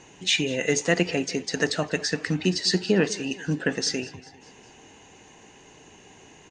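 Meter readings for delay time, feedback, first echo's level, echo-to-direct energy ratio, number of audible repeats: 200 ms, 53%, −19.5 dB, −18.0 dB, 3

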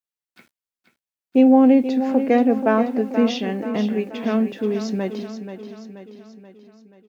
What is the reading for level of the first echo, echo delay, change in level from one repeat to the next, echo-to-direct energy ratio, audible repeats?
−10.0 dB, 481 ms, −5.5 dB, −8.5 dB, 5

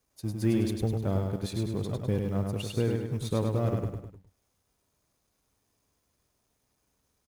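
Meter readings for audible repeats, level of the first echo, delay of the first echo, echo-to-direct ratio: 4, −4.0 dB, 102 ms, −3.0 dB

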